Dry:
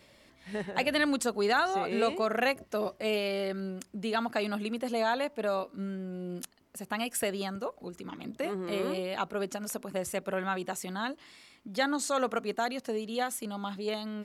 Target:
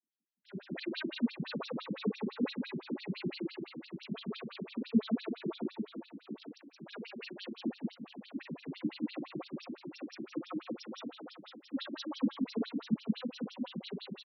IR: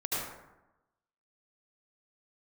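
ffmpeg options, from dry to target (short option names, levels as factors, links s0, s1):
-filter_complex "[0:a]afftfilt=real='re':imag='-im':win_size=4096:overlap=0.75,asplit=2[s0][s1];[s1]acompressor=threshold=0.01:ratio=20,volume=1.26[s2];[s0][s2]amix=inputs=2:normalize=0,equalizer=f=1400:w=0.35:g=-12.5,asoftclip=type=hard:threshold=0.0266,acontrast=58,asplit=2[s3][s4];[s4]aecho=0:1:190|456|828.4|1350|2080:0.631|0.398|0.251|0.158|0.1[s5];[s3][s5]amix=inputs=2:normalize=0,afreqshift=-250,agate=range=0.0141:threshold=0.00794:ratio=16:detection=peak,equalizer=f=230:w=4:g=14,afftfilt=real='re*between(b*sr/1024,230*pow(4200/230,0.5+0.5*sin(2*PI*5.9*pts/sr))/1.41,230*pow(4200/230,0.5+0.5*sin(2*PI*5.9*pts/sr))*1.41)':imag='im*between(b*sr/1024,230*pow(4200/230,0.5+0.5*sin(2*PI*5.9*pts/sr))/1.41,230*pow(4200/230,0.5+0.5*sin(2*PI*5.9*pts/sr))*1.41)':win_size=1024:overlap=0.75"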